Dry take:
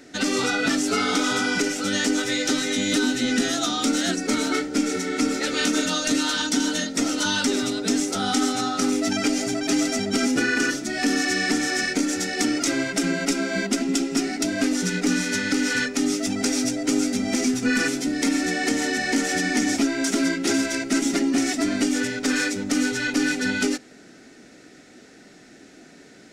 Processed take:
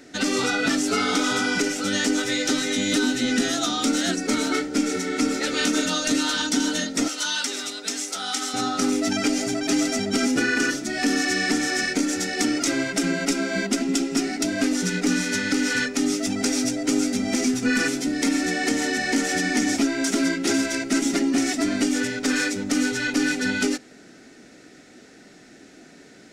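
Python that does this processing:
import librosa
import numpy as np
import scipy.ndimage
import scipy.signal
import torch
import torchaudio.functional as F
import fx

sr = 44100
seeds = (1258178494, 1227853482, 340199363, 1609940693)

y = fx.highpass(x, sr, hz=1400.0, slope=6, at=(7.08, 8.54))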